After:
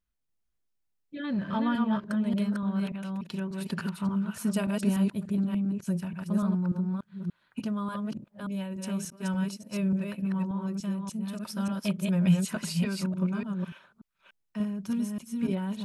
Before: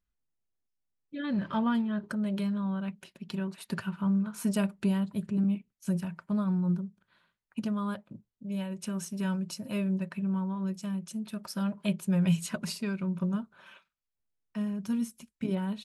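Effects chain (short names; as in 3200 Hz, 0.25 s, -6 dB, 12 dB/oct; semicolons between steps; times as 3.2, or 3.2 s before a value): reverse delay 0.292 s, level -2.5 dB; 9.1–10.55 expander -29 dBFS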